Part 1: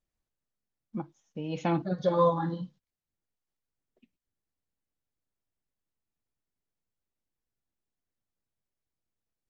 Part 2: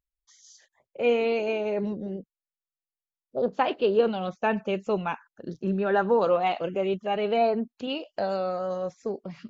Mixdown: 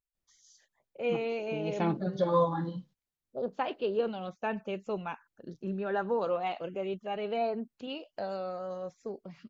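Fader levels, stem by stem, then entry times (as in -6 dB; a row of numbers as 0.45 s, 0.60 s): -2.0 dB, -8.0 dB; 0.15 s, 0.00 s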